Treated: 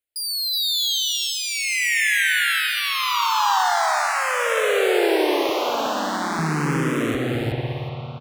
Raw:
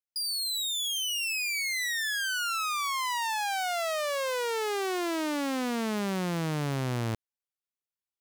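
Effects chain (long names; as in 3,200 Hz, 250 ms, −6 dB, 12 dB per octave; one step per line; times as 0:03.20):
0:05.49–0:06.39: high-pass filter 450 Hz 12 dB per octave
convolution reverb RT60 3.9 s, pre-delay 202 ms, DRR −1 dB
0:02.67–0:03.57: frequency shifter +15 Hz
repeating echo 370 ms, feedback 17%, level −5 dB
frequency shifter mixed with the dry sound +0.41 Hz
level +8.5 dB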